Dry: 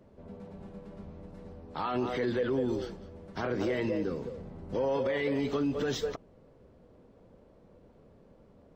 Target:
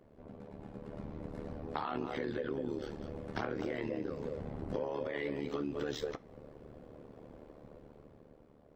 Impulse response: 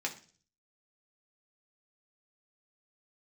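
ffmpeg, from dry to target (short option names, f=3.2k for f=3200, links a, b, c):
-filter_complex "[0:a]tremolo=f=74:d=0.889,acompressor=threshold=-43dB:ratio=8,asplit=2[a][b];[1:a]atrim=start_sample=2205,lowpass=4.3k[c];[b][c]afir=irnorm=-1:irlink=0,volume=-10dB[d];[a][d]amix=inputs=2:normalize=0,dynaudnorm=f=110:g=17:m=8.5dB,volume=-1dB"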